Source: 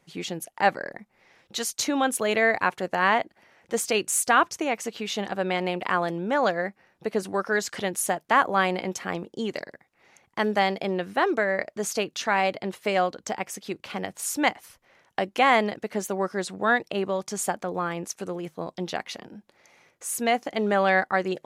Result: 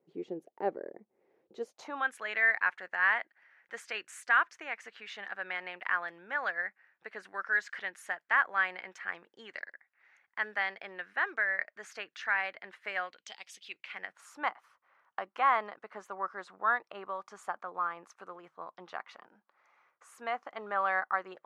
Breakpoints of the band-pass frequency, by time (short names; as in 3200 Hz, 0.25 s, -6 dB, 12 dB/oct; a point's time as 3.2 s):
band-pass, Q 3.2
1.6 s 400 Hz
2.07 s 1700 Hz
13.03 s 1700 Hz
13.4 s 4200 Hz
14.29 s 1200 Hz